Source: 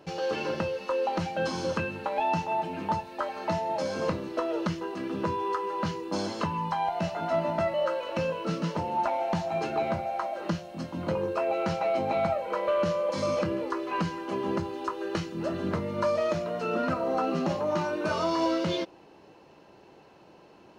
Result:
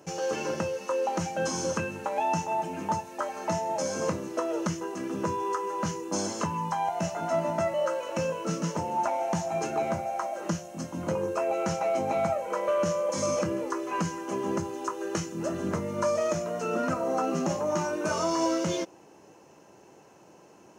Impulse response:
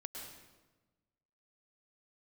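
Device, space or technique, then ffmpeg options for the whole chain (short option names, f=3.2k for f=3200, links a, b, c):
budget condenser microphone: -af "highpass=81,highshelf=f=5.2k:t=q:w=3:g=7.5"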